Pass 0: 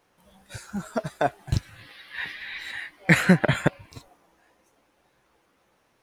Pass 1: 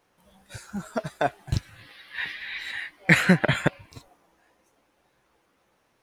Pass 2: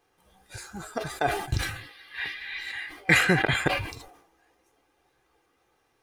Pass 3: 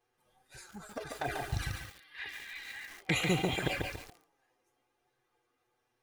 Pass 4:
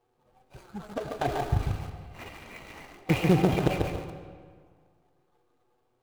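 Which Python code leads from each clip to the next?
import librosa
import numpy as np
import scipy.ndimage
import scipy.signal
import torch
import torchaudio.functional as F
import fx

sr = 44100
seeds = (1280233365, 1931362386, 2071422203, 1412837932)

y1 = fx.dynamic_eq(x, sr, hz=2800.0, q=0.71, threshold_db=-39.0, ratio=4.0, max_db=4)
y1 = F.gain(torch.from_numpy(y1), -1.5).numpy()
y2 = y1 + 0.51 * np.pad(y1, (int(2.5 * sr / 1000.0), 0))[:len(y1)]
y2 = fx.sustainer(y2, sr, db_per_s=75.0)
y2 = F.gain(torch.from_numpy(y2), -2.5).numpy()
y3 = fx.env_flanger(y2, sr, rest_ms=8.3, full_db=-20.0)
y3 = fx.echo_crushed(y3, sr, ms=141, feedback_pct=35, bits=7, wet_db=-3.0)
y3 = F.gain(torch.from_numpy(y3), -6.5).numpy()
y4 = scipy.signal.medfilt(y3, 25)
y4 = fx.rev_freeverb(y4, sr, rt60_s=1.8, hf_ratio=0.7, predelay_ms=45, drr_db=9.0)
y4 = F.gain(torch.from_numpy(y4), 9.0).numpy()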